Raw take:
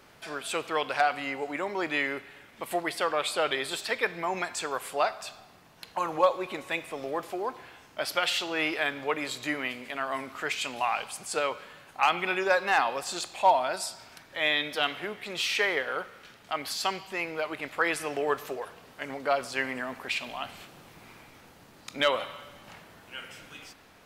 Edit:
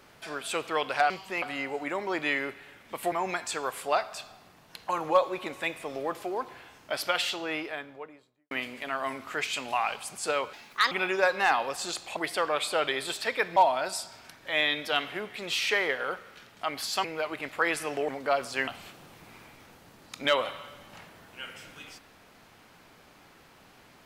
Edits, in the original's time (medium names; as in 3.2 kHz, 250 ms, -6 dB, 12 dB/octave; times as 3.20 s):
2.80–4.20 s: move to 13.44 s
8.12–9.59 s: studio fade out
11.61–12.19 s: speed 151%
16.92–17.24 s: move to 1.10 s
18.28–19.08 s: delete
19.67–20.42 s: delete